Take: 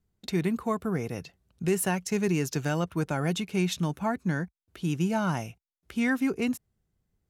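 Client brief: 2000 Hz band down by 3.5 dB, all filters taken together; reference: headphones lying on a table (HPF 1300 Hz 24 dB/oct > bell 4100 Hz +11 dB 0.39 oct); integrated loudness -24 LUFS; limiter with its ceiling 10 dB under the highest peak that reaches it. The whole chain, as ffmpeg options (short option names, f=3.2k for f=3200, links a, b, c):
-af "equalizer=f=2k:t=o:g=-4.5,alimiter=level_in=2.5dB:limit=-24dB:level=0:latency=1,volume=-2.5dB,highpass=f=1.3k:w=0.5412,highpass=f=1.3k:w=1.3066,equalizer=f=4.1k:t=o:w=0.39:g=11,volume=18.5dB"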